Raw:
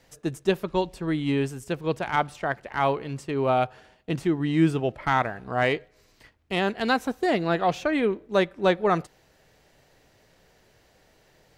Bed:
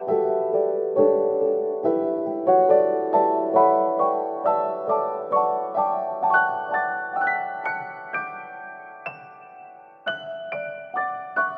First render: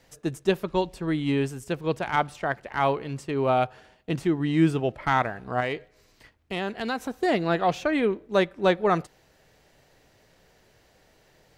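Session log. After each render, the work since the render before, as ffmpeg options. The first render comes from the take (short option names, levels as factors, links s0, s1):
-filter_complex "[0:a]asettb=1/sr,asplit=3[s0][s1][s2];[s0]atrim=end=5.604[s3];[s1]atrim=start=5.6:end=7.23,asetpts=PTS-STARTPTS,afade=t=in:d=0.004:c=qsin,afade=t=out:st=1.626:d=0.004:c=qsin,acompressor=threshold=0.0398:ratio=2:attack=3.2:release=140:knee=1:detection=peak[s4];[s2]atrim=start=7.226[s5];[s3][s4]acrossfade=d=0.004:c1=hsin:c2=qsin[s6];[s6][s5]acrossfade=d=0.004:c1=qsin:c2=hsin"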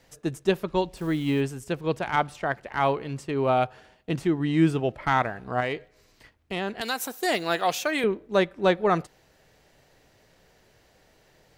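-filter_complex "[0:a]asettb=1/sr,asplit=3[s0][s1][s2];[s0]atrim=end=0.974[s3];[s1]atrim=start=0.97:end=1.41,asetpts=PTS-STARTPTS,afade=t=in:d=0.004:c=qsin,afade=t=out:st=0.436:d=0.004:c=qsin,acrusher=bits=9:dc=4:mix=0:aa=0.000001[s4];[s2]atrim=start=1.406[s5];[s3][s4]acrossfade=d=0.004:c1=hsin:c2=qsin[s6];[s6][s5]acrossfade=d=0.004:c1=qsin:c2=hsin,asettb=1/sr,asplit=3[s7][s8][s9];[s7]atrim=end=6.814[s10];[s8]atrim=start=6.81:end=8.04,asetpts=PTS-STARTPTS,afade=t=in:d=0.004:c=qsin,afade=t=out:st=1.226:d=0.004:c=qsin,aemphasis=mode=production:type=riaa[s11];[s9]atrim=start=8.036[s12];[s10][s11]acrossfade=d=0.004:c1=hsin:c2=qsin[s13];[s13][s12]acrossfade=d=0.004:c1=qsin:c2=hsin"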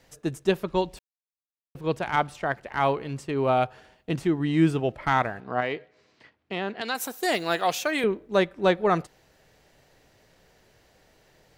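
-filter_complex "[0:a]asettb=1/sr,asplit=3[s0][s1][s2];[s0]atrim=end=5.404[s3];[s1]atrim=start=5.4:end=6.95,asetpts=PTS-STARTPTS,afade=t=in:d=0.004:c=qsin,afade=t=out:st=1.546:d=0.004:c=qsin,highpass=150,lowpass=4300[s4];[s2]atrim=start=6.946[s5];[s3][s4]acrossfade=d=0.004:c1=hsin:c2=qsin[s6];[s6][s5]acrossfade=d=0.004:c1=qsin:c2=hsin,asplit=3[s7][s8][s9];[s7]atrim=end=0.99,asetpts=PTS-STARTPTS,afade=t=out:st=0.986:d=0.004:c=hsin[s10];[s8]atrim=start=0.99:end=1.75,asetpts=PTS-STARTPTS,volume=0[s11];[s9]atrim=start=1.75,asetpts=PTS-STARTPTS,afade=t=in:d=0.004:c=hsin[s12];[s10][s11][s12]concat=n=3:v=0:a=1"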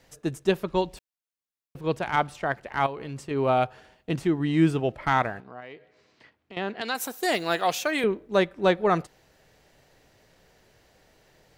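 -filter_complex "[0:a]asettb=1/sr,asplit=3[s0][s1][s2];[s0]atrim=end=2.864[s3];[s1]atrim=start=2.86:end=3.31,asetpts=PTS-STARTPTS,afade=t=in:d=0.004:c=qsin,afade=t=out:st=0.446:d=0.004:c=qsin,acompressor=threshold=0.0282:ratio=5:attack=3.2:release=140:knee=1:detection=peak[s4];[s2]atrim=start=3.306[s5];[s3][s4]acrossfade=d=0.004:c1=hsin:c2=qsin[s6];[s6][s5]acrossfade=d=0.004:c1=qsin:c2=hsin,asettb=1/sr,asplit=3[s7][s8][s9];[s7]atrim=end=5.404[s10];[s8]atrim=start=5.4:end=6.57,asetpts=PTS-STARTPTS,afade=t=in:d=0.004:c=qsin,afade=t=out:st=1.166:d=0.004:c=qsin,acompressor=threshold=0.00355:ratio=2:attack=3.2:release=140:knee=1:detection=peak[s11];[s9]atrim=start=6.566[s12];[s10][s11]acrossfade=d=0.004:c1=hsin:c2=qsin[s13];[s13][s12]acrossfade=d=0.004:c1=qsin:c2=hsin"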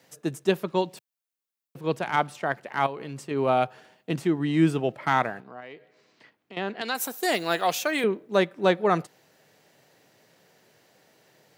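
-af "highpass=f=130:w=0.5412,highpass=f=130:w=1.3066,highshelf=f=11000:g=6"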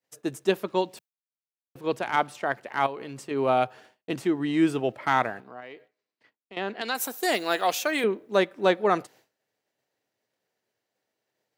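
-af "agate=range=0.0224:threshold=0.00447:ratio=3:detection=peak,equalizer=f=160:t=o:w=0.37:g=-11"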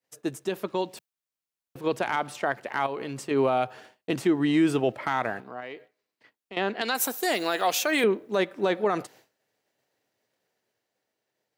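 -af "alimiter=limit=0.126:level=0:latency=1:release=69,dynaudnorm=f=120:g=17:m=1.58"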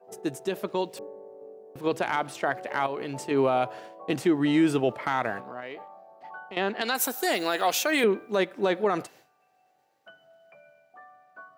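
-filter_complex "[1:a]volume=0.0631[s0];[0:a][s0]amix=inputs=2:normalize=0"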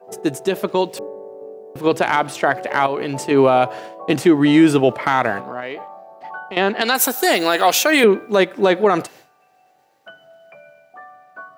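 -af "volume=3.16"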